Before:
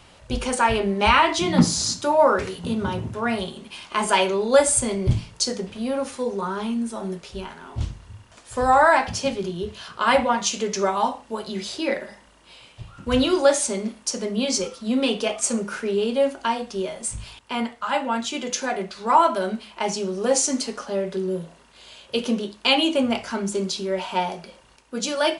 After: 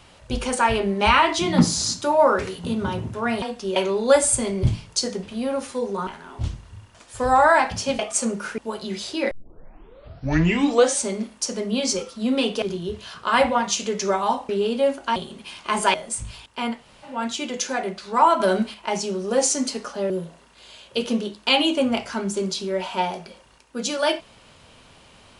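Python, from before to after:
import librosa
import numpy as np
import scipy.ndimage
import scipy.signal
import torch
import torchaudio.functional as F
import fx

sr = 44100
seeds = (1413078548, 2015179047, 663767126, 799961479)

y = fx.edit(x, sr, fx.swap(start_s=3.42, length_s=0.78, other_s=16.53, other_length_s=0.34),
    fx.cut(start_s=6.51, length_s=0.93),
    fx.swap(start_s=9.36, length_s=1.87, other_s=15.27, other_length_s=0.59),
    fx.tape_start(start_s=11.96, length_s=1.72),
    fx.room_tone_fill(start_s=17.71, length_s=0.36, crossfade_s=0.24),
    fx.clip_gain(start_s=19.33, length_s=0.34, db=5.5),
    fx.cut(start_s=21.03, length_s=0.25), tone=tone)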